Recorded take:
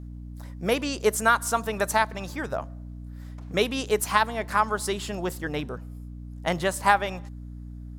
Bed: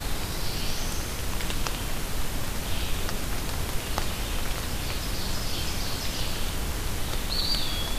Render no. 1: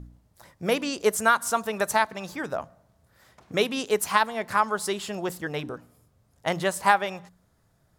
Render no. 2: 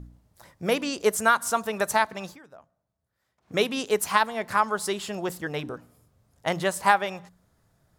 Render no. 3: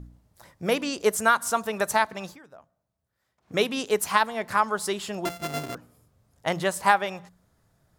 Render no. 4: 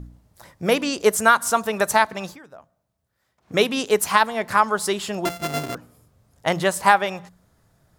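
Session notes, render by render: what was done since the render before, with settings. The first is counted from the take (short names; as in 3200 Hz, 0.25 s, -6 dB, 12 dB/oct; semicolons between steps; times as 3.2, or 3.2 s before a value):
de-hum 60 Hz, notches 5
2.25–3.56 dip -19 dB, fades 0.14 s
5.25–5.75 sample sorter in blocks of 64 samples
gain +5 dB; limiter -1 dBFS, peak gain reduction 1.5 dB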